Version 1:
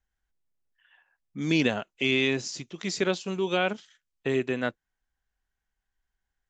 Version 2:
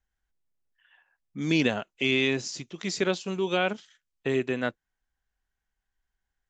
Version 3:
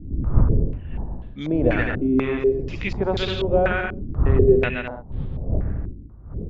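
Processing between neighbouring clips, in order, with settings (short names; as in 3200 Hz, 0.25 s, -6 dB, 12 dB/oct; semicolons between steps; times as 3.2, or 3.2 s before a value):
nothing audible
wind noise 91 Hz -26 dBFS; bouncing-ball echo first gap 0.13 s, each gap 0.65×, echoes 5; stepped low-pass 4.1 Hz 300–3600 Hz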